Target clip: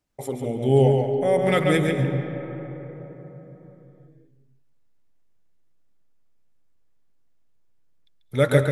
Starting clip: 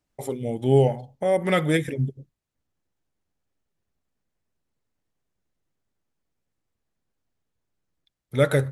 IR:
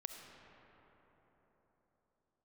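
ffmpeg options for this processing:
-filter_complex "[0:a]asplit=2[s0][s1];[1:a]atrim=start_sample=2205,highshelf=f=9000:g=-11.5,adelay=140[s2];[s1][s2]afir=irnorm=-1:irlink=0,volume=1.12[s3];[s0][s3]amix=inputs=2:normalize=0"

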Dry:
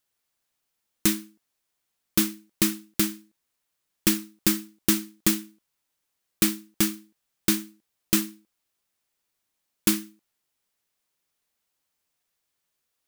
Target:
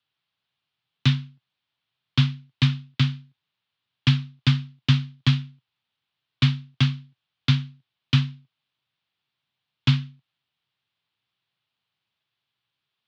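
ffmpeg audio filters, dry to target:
-af "crystalizer=i=6:c=0,highpass=f=170:t=q:w=0.5412,highpass=f=170:t=q:w=1.307,lowpass=f=3600:t=q:w=0.5176,lowpass=f=3600:t=q:w=0.7071,lowpass=f=3600:t=q:w=1.932,afreqshift=-71,equalizer=f=125:t=o:w=1:g=12,equalizer=f=250:t=o:w=1:g=-4,equalizer=f=500:t=o:w=1:g=-6,equalizer=f=2000:t=o:w=1:g=-6"

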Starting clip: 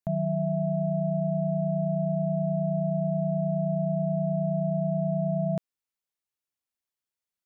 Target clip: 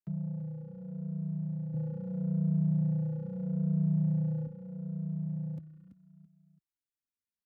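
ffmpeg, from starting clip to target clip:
-filter_complex "[0:a]acrossover=split=92|260|580[s0][s1][s2][s3];[s0]acompressor=threshold=0.00251:ratio=4[s4];[s1]acompressor=threshold=0.0398:ratio=4[s5];[s2]acompressor=threshold=0.00158:ratio=4[s6];[s3]acompressor=threshold=0.00562:ratio=4[s7];[s4][s5][s6][s7]amix=inputs=4:normalize=0,asoftclip=type=hard:threshold=0.0531,firequalizer=gain_entry='entry(210,0);entry(310,1);entry(620,-23);entry(1300,-8)':delay=0.05:min_phase=1,aecho=1:1:333|666|999:0.282|0.0817|0.0237,asoftclip=type=tanh:threshold=0.0376,asettb=1/sr,asplit=3[s8][s9][s10];[s8]atrim=end=1.744[s11];[s9]atrim=start=1.74:end=4.47,asetpts=PTS-STARTPTS,afade=t=in:d=0.004:c=qsin,afade=t=out:st=2.726:d=0.004:c=qsin,acontrast=80[s12];[s10]atrim=start=4.466[s13];[s11][s12]acrossfade=d=0.004:c1=hsin:c2=qsin[s14];[s14][s13]acrossfade=d=0.004:c1=qsin:c2=hsin,asplit=2[s15][s16];[s16]adelay=2.6,afreqshift=-0.78[s17];[s15][s17]amix=inputs=2:normalize=1"

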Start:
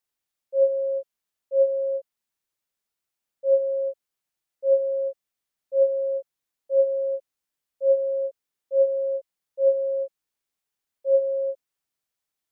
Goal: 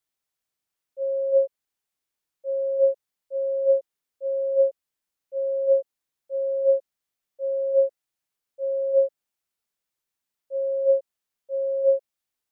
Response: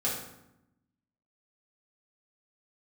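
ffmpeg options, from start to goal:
-af "areverse"

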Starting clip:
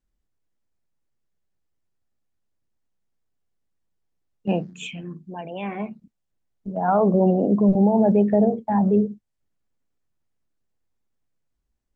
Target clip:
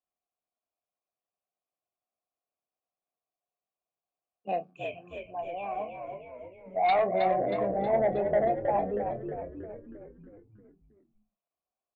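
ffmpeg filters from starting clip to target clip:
-filter_complex "[0:a]asplit=3[s0][s1][s2];[s0]bandpass=f=730:t=q:w=8,volume=1[s3];[s1]bandpass=f=1090:t=q:w=8,volume=0.501[s4];[s2]bandpass=f=2440:t=q:w=8,volume=0.355[s5];[s3][s4][s5]amix=inputs=3:normalize=0,aemphasis=mode=reproduction:type=cd,aeval=exprs='0.2*(cos(1*acos(clip(val(0)/0.2,-1,1)))-cos(1*PI/2))+0.0355*(cos(3*acos(clip(val(0)/0.2,-1,1)))-cos(3*PI/2))+0.0501*(cos(5*acos(clip(val(0)/0.2,-1,1)))-cos(5*PI/2))':c=same,asplit=2[s6][s7];[s7]adelay=27,volume=0.237[s8];[s6][s8]amix=inputs=2:normalize=0,asplit=2[s9][s10];[s10]asplit=7[s11][s12][s13][s14][s15][s16][s17];[s11]adelay=317,afreqshift=-60,volume=0.501[s18];[s12]adelay=634,afreqshift=-120,volume=0.282[s19];[s13]adelay=951,afreqshift=-180,volume=0.157[s20];[s14]adelay=1268,afreqshift=-240,volume=0.0881[s21];[s15]adelay=1585,afreqshift=-300,volume=0.0495[s22];[s16]adelay=1902,afreqshift=-360,volume=0.0275[s23];[s17]adelay=2219,afreqshift=-420,volume=0.0155[s24];[s18][s19][s20][s21][s22][s23][s24]amix=inputs=7:normalize=0[s25];[s9][s25]amix=inputs=2:normalize=0"

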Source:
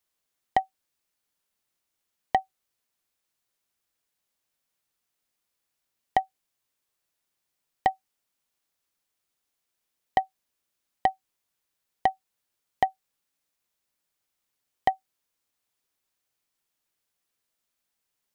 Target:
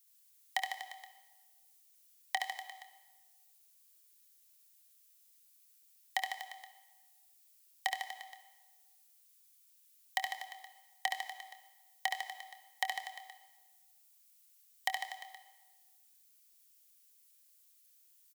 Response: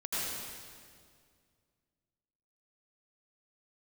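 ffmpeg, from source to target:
-filter_complex "[0:a]highpass=980,aderivative,asplit=2[s0][s1];[s1]adelay=26,volume=0.224[s2];[s0][s2]amix=inputs=2:normalize=0,aecho=1:1:70|150.5|243.1|349.5|472:0.631|0.398|0.251|0.158|0.1,asplit=2[s3][s4];[1:a]atrim=start_sample=2205,asetrate=70560,aresample=44100,adelay=7[s5];[s4][s5]afir=irnorm=-1:irlink=0,volume=0.237[s6];[s3][s6]amix=inputs=2:normalize=0,volume=3.16"

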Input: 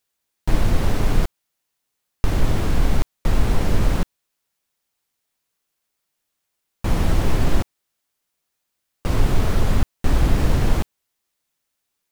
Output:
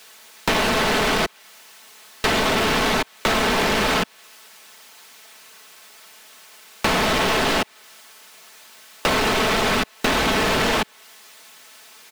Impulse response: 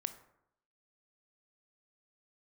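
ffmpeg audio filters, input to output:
-filter_complex "[0:a]asplit=2[s0][s1];[s1]highpass=f=720:p=1,volume=112,asoftclip=type=tanh:threshold=0.668[s2];[s0][s2]amix=inputs=2:normalize=0,lowpass=f=3900:p=1,volume=0.501,aecho=1:1:4.6:0.51,acrossover=split=2700[s3][s4];[s3]asoftclip=type=tanh:threshold=0.237[s5];[s5][s4]amix=inputs=2:normalize=0,acrossover=split=180|4000[s6][s7][s8];[s6]acompressor=threshold=0.0251:ratio=4[s9];[s7]acompressor=threshold=0.112:ratio=4[s10];[s8]acompressor=threshold=0.0178:ratio=4[s11];[s9][s10][s11]amix=inputs=3:normalize=0,volume=1.12"

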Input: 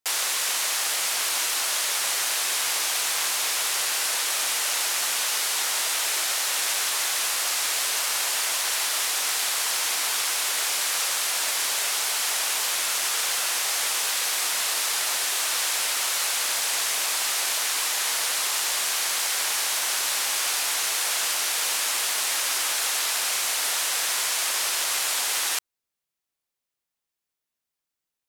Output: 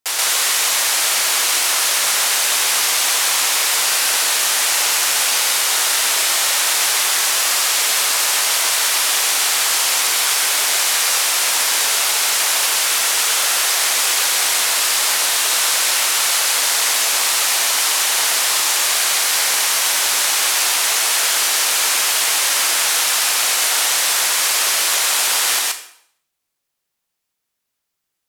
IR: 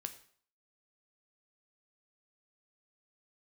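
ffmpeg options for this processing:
-filter_complex "[0:a]asplit=2[s0][s1];[1:a]atrim=start_sample=2205,asetrate=36162,aresample=44100,adelay=128[s2];[s1][s2]afir=irnorm=-1:irlink=0,volume=1.5[s3];[s0][s3]amix=inputs=2:normalize=0,volume=1.68"

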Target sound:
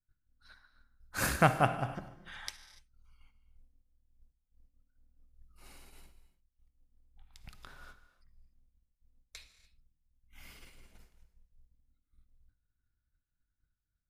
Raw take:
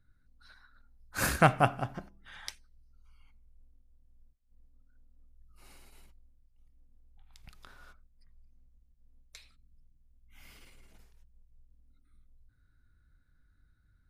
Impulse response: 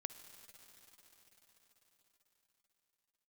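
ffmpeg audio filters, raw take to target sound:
-filter_complex "[0:a]agate=range=0.0224:threshold=0.00282:ratio=3:detection=peak,asplit=2[s0][s1];[s1]acompressor=threshold=0.00398:ratio=6,volume=1[s2];[s0][s2]amix=inputs=2:normalize=0[s3];[1:a]atrim=start_sample=2205,afade=t=out:st=0.35:d=0.01,atrim=end_sample=15876[s4];[s3][s4]afir=irnorm=-1:irlink=0,volume=1.12"

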